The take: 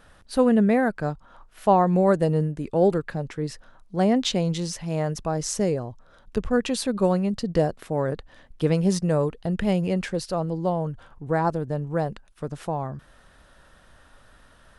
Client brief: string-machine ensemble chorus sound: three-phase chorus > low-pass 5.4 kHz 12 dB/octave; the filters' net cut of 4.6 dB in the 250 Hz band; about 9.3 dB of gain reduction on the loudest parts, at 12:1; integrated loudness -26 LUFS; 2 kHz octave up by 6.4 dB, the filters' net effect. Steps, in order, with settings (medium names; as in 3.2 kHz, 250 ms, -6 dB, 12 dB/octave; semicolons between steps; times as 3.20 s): peaking EQ 250 Hz -7 dB; peaking EQ 2 kHz +8.5 dB; compression 12:1, threshold -23 dBFS; three-phase chorus; low-pass 5.4 kHz 12 dB/octave; trim +7.5 dB